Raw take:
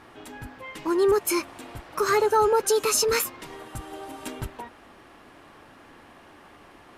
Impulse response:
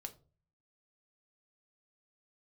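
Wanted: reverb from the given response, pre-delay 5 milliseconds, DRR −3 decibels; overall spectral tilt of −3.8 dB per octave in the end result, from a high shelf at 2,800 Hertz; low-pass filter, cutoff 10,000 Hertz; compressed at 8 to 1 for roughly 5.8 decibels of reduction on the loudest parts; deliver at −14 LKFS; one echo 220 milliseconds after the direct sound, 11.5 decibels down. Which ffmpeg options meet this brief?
-filter_complex "[0:a]lowpass=10000,highshelf=frequency=2800:gain=-7,acompressor=threshold=-23dB:ratio=8,aecho=1:1:220:0.266,asplit=2[link_01][link_02];[1:a]atrim=start_sample=2205,adelay=5[link_03];[link_02][link_03]afir=irnorm=-1:irlink=0,volume=7dB[link_04];[link_01][link_04]amix=inputs=2:normalize=0,volume=10dB"

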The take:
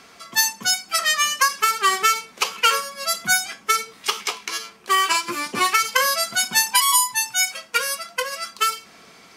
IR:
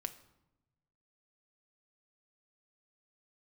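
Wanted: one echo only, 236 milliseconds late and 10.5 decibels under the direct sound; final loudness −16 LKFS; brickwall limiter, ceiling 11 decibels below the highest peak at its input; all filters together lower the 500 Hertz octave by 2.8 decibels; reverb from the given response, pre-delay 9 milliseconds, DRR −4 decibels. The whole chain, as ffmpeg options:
-filter_complex "[0:a]equalizer=frequency=500:width_type=o:gain=-3.5,alimiter=limit=-14.5dB:level=0:latency=1,aecho=1:1:236:0.299,asplit=2[link_01][link_02];[1:a]atrim=start_sample=2205,adelay=9[link_03];[link_02][link_03]afir=irnorm=-1:irlink=0,volume=5.5dB[link_04];[link_01][link_04]amix=inputs=2:normalize=0,volume=2.5dB"

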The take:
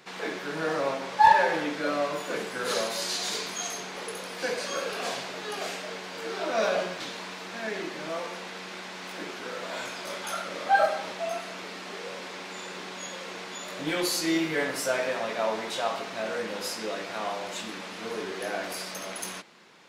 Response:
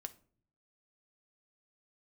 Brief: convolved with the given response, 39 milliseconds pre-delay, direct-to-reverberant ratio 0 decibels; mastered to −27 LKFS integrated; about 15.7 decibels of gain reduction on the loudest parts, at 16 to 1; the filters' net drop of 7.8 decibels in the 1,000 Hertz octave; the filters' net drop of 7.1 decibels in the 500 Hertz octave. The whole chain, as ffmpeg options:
-filter_complex "[0:a]equalizer=frequency=500:width_type=o:gain=-6.5,equalizer=frequency=1000:width_type=o:gain=-7.5,acompressor=threshold=-36dB:ratio=16,asplit=2[link_01][link_02];[1:a]atrim=start_sample=2205,adelay=39[link_03];[link_02][link_03]afir=irnorm=-1:irlink=0,volume=4dB[link_04];[link_01][link_04]amix=inputs=2:normalize=0,volume=9.5dB"

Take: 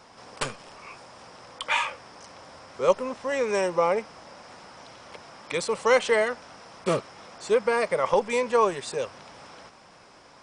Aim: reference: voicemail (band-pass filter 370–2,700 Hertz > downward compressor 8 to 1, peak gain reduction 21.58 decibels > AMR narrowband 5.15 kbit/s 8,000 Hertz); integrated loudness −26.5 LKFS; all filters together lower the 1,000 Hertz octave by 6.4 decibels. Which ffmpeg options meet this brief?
ffmpeg -i in.wav -af "highpass=370,lowpass=2700,equalizer=frequency=1000:width_type=o:gain=-7.5,acompressor=threshold=-40dB:ratio=8,volume=21dB" -ar 8000 -c:a libopencore_amrnb -b:a 5150 out.amr

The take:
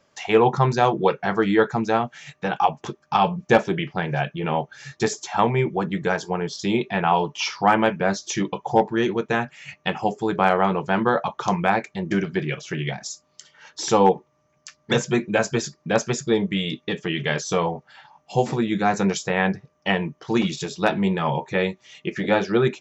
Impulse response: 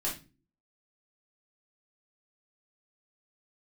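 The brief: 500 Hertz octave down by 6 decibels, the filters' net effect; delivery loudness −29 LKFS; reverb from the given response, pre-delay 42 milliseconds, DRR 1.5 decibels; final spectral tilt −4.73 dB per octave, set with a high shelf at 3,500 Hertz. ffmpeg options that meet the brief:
-filter_complex "[0:a]equalizer=frequency=500:width_type=o:gain=-7.5,highshelf=frequency=3500:gain=-4,asplit=2[link_01][link_02];[1:a]atrim=start_sample=2205,adelay=42[link_03];[link_02][link_03]afir=irnorm=-1:irlink=0,volume=-6dB[link_04];[link_01][link_04]amix=inputs=2:normalize=0,volume=-6dB"

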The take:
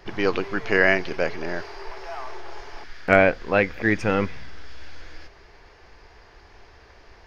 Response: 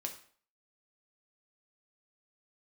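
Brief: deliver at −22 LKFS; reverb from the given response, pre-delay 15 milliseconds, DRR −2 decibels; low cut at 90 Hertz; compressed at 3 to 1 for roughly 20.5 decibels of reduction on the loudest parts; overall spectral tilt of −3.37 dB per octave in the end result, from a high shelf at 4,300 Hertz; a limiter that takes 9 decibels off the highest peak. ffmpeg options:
-filter_complex "[0:a]highpass=90,highshelf=frequency=4300:gain=-6,acompressor=threshold=-40dB:ratio=3,alimiter=level_in=4.5dB:limit=-24dB:level=0:latency=1,volume=-4.5dB,asplit=2[link_01][link_02];[1:a]atrim=start_sample=2205,adelay=15[link_03];[link_02][link_03]afir=irnorm=-1:irlink=0,volume=3dB[link_04];[link_01][link_04]amix=inputs=2:normalize=0,volume=18dB"

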